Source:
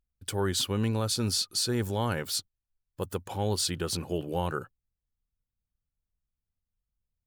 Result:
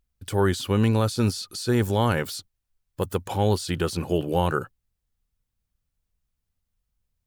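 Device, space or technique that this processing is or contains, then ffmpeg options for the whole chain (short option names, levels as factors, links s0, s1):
de-esser from a sidechain: -filter_complex "[0:a]asplit=2[s0][s1];[s1]highpass=4600,apad=whole_len=320232[s2];[s0][s2]sidechaincompress=threshold=0.00708:ratio=4:attack=2.2:release=26,volume=2.37"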